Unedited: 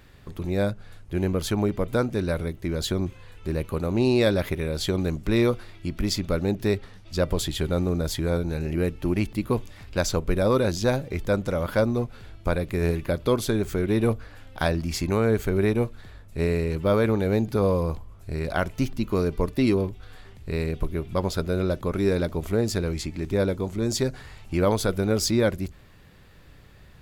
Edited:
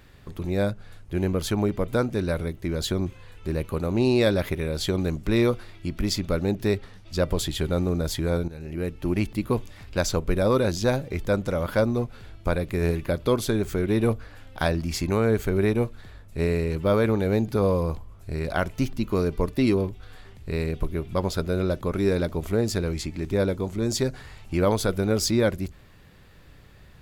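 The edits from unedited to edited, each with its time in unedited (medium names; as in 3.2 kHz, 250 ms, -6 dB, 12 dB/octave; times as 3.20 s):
8.48–9.17 s: fade in, from -13.5 dB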